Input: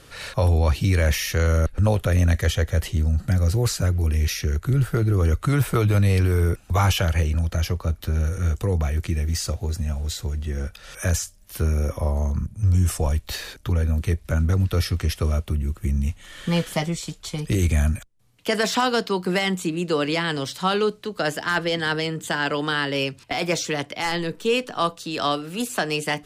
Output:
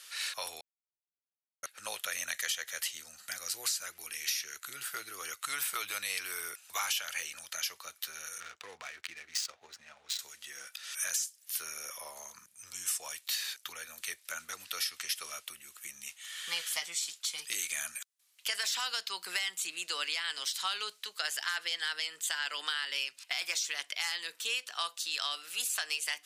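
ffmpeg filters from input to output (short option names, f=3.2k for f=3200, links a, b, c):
-filter_complex "[0:a]asettb=1/sr,asplit=3[a][b][c];[a]atrim=end=8.404[d];[b]atrim=start=8.4:end=10.19,asetpts=PTS-STARTPTS,afade=t=in:d=0.004:c=qsin,afade=t=out:st=1.786:d=0.004:c=qsin,adynamicsmooth=sensitivity=6:basefreq=1.3k[e];[c]atrim=start=10.186[f];[d][e]acrossfade=d=0.004:c1=hsin:c2=qsin[g];[g][f]acrossfade=d=0.004:c1=qsin:c2=hsin,asplit=3[h][i][j];[h]atrim=end=0.61,asetpts=PTS-STARTPTS,afade=t=out:st=0.606:d=0.004:c=hsin[k];[i]atrim=start=0.61:end=1.63,asetpts=PTS-STARTPTS,volume=0[l];[j]atrim=start=1.63,asetpts=PTS-STARTPTS,afade=t=in:d=0.004:c=hsin[m];[k][l][m]concat=n=3:v=0:a=1,highpass=1.5k,highshelf=f=2.6k:g=9.5,acompressor=threshold=-25dB:ratio=6,volume=-5dB"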